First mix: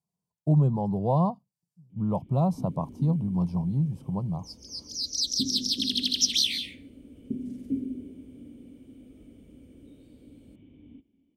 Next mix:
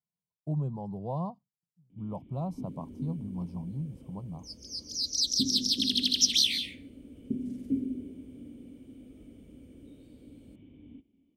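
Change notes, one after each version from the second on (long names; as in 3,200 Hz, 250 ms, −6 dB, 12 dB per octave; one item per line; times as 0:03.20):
speech −10.0 dB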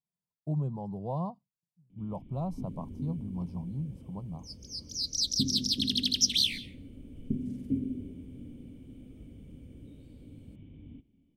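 first sound: add low shelf with overshoot 200 Hz +6.5 dB, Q 1.5
second sound: send −11.5 dB
master: remove high-pass filter 42 Hz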